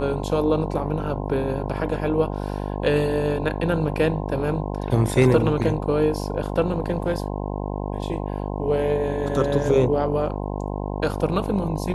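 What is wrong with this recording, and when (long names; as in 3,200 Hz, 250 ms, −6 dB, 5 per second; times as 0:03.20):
mains buzz 50 Hz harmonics 21 −28 dBFS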